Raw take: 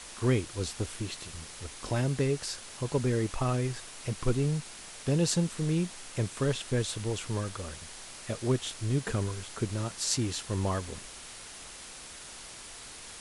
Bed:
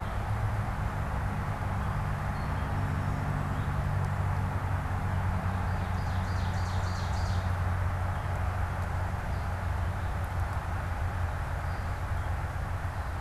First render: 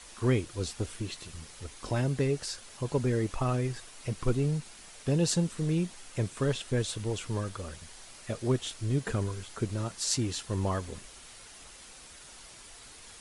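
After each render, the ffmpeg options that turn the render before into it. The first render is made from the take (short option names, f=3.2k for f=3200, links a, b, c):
-af "afftdn=nr=6:nf=-46"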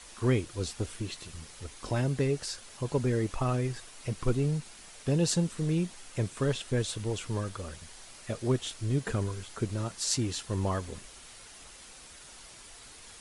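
-af anull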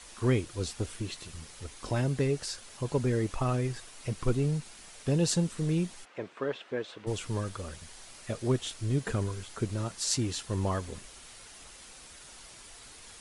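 -filter_complex "[0:a]asplit=3[a][b][c];[a]afade=t=out:st=6.04:d=0.02[d];[b]highpass=350,lowpass=2.3k,afade=t=in:st=6.04:d=0.02,afade=t=out:st=7.06:d=0.02[e];[c]afade=t=in:st=7.06:d=0.02[f];[d][e][f]amix=inputs=3:normalize=0"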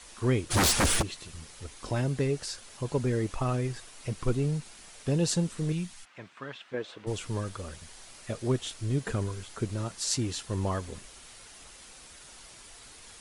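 -filter_complex "[0:a]asplit=3[a][b][c];[a]afade=t=out:st=0.5:d=0.02[d];[b]aeval=exprs='0.106*sin(PI/2*7.08*val(0)/0.106)':c=same,afade=t=in:st=0.5:d=0.02,afade=t=out:st=1.01:d=0.02[e];[c]afade=t=in:st=1.01:d=0.02[f];[d][e][f]amix=inputs=3:normalize=0,asettb=1/sr,asplit=3[g][h][i];[g]atrim=end=5.724[j];[h]atrim=start=5.72:end=6.74,asetpts=PTS-STARTPTS,afade=t=in:d=0.004:c=qsin,afade=t=out:st=1.016:d=0.004:c=qsin,equalizer=f=440:w=0.98:g=-13.5[k];[i]atrim=start=6.736[l];[j][k]acrossfade=d=0.004:c1=hsin:c2=qsin[m];[m][l]acrossfade=d=0.004:c1=qsin:c2=hsin"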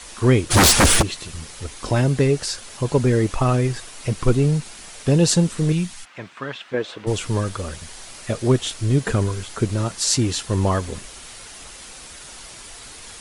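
-af "volume=10.5dB,alimiter=limit=-2dB:level=0:latency=1"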